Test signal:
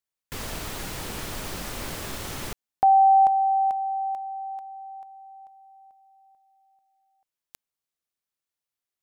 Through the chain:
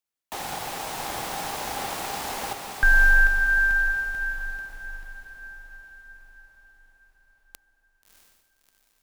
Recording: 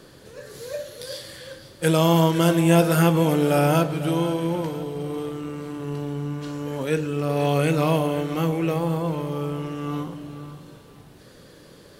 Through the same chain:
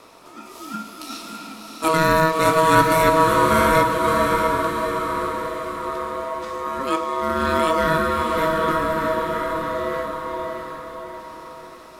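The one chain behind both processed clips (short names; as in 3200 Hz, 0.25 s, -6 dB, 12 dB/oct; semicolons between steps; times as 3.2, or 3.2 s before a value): ring modulator 800 Hz; diffused feedback echo 0.655 s, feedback 47%, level -4.5 dB; gain +3.5 dB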